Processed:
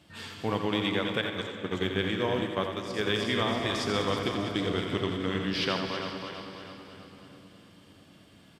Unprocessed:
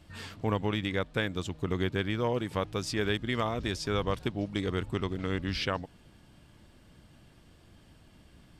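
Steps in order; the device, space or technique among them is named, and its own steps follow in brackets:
feedback delay that plays each chunk backwards 162 ms, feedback 71%, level −7 dB
0:01.21–0:03.13: noise gate −29 dBFS, range −14 dB
PA in a hall (high-pass filter 130 Hz 12 dB per octave; parametric band 3,300 Hz +4 dB 0.67 octaves; single-tap delay 86 ms −7.5 dB; convolution reverb RT60 4.0 s, pre-delay 54 ms, DRR 7.5 dB)

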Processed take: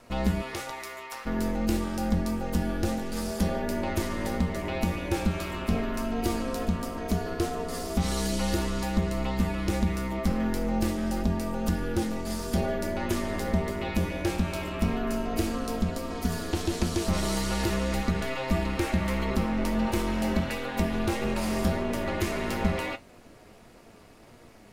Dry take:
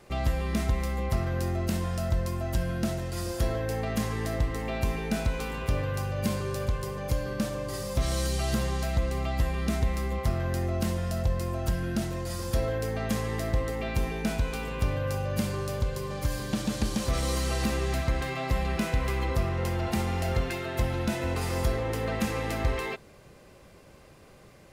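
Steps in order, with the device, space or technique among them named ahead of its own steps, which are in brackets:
0:00.41–0:01.25: high-pass filter 330 Hz → 1,200 Hz 12 dB per octave
alien voice (ring modulation 130 Hz; flanger 1.6 Hz, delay 8.2 ms, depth 1.5 ms, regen +64%)
level +8 dB

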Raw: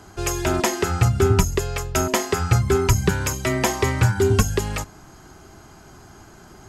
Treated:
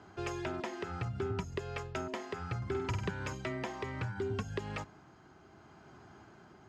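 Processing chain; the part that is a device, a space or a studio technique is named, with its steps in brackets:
AM radio (band-pass filter 100–3,400 Hz; downward compressor 5 to 1, threshold −23 dBFS, peak gain reduction 9.5 dB; soft clipping −13 dBFS, distortion −25 dB; amplitude tremolo 0.66 Hz, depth 32%)
0:02.57–0:03.11: flutter between parallel walls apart 8.4 metres, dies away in 0.62 s
level −8.5 dB

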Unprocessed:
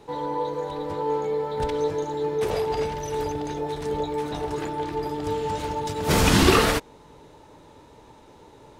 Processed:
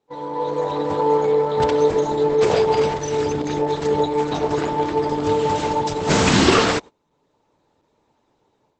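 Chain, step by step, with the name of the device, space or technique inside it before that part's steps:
0:02.96–0:03.53: dynamic equaliser 750 Hz, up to −7 dB, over −46 dBFS, Q 1.8
video call (high-pass filter 110 Hz 12 dB per octave; automatic gain control gain up to 10 dB; noise gate −30 dBFS, range −23 dB; level −1 dB; Opus 12 kbit/s 48,000 Hz)

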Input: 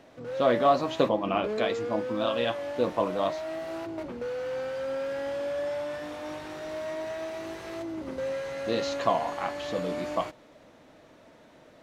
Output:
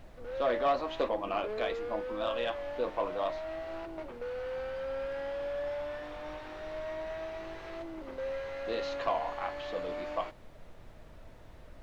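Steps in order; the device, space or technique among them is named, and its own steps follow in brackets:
aircraft cabin announcement (band-pass filter 380–3,800 Hz; soft clipping −17 dBFS, distortion −17 dB; brown noise bed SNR 14 dB)
level −3.5 dB

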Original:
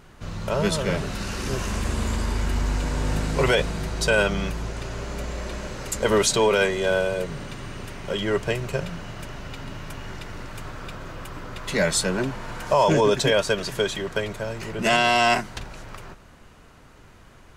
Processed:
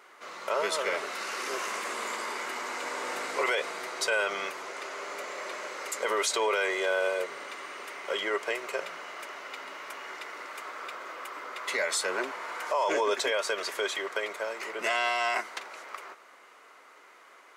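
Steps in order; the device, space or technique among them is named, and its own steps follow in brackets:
laptop speaker (high-pass filter 390 Hz 24 dB per octave; parametric band 1,200 Hz +7 dB 0.55 octaves; parametric band 2,100 Hz +9.5 dB 0.22 octaves; brickwall limiter −15 dBFS, peak gain reduction 10 dB)
level −3.5 dB

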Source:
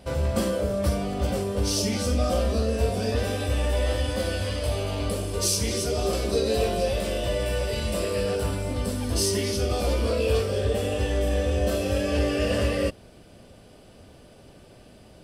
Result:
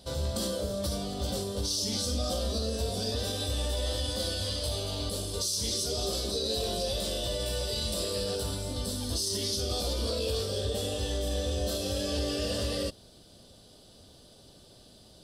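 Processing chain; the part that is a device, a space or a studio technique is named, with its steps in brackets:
over-bright horn tweeter (high shelf with overshoot 3,000 Hz +7.5 dB, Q 3; brickwall limiter −15 dBFS, peak gain reduction 11 dB)
level −6.5 dB

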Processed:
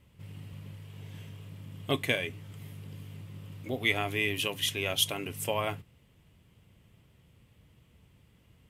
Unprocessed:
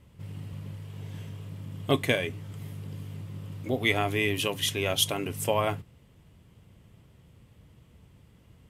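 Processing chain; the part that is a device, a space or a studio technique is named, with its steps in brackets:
presence and air boost (parametric band 2,600 Hz +5 dB 1.2 octaves; high-shelf EQ 11,000 Hz +6.5 dB)
level −5.5 dB

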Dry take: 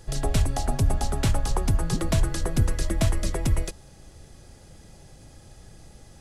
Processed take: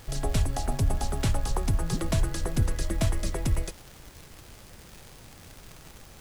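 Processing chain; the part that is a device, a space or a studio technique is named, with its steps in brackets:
vinyl LP (surface crackle 150 per second −32 dBFS; pink noise bed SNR 25 dB)
level −3 dB

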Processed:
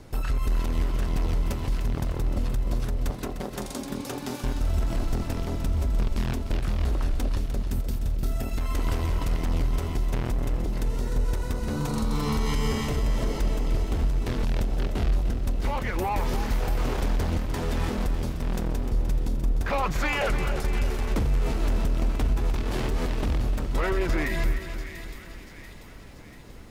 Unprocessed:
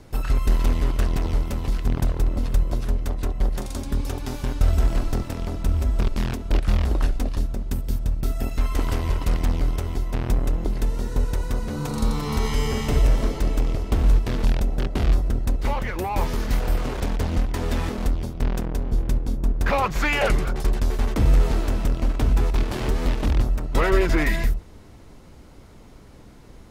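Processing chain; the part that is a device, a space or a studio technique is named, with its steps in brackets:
0:03.10–0:04.44: high-pass filter 140 Hz 24 dB per octave
delay with a high-pass on its return 688 ms, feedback 54%, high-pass 2,300 Hz, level −13 dB
soft clipper into limiter (soft clipping −10.5 dBFS, distortion −23 dB; brickwall limiter −19 dBFS, peak gain reduction 7.5 dB)
feedback echo at a low word length 301 ms, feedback 55%, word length 10 bits, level −10.5 dB

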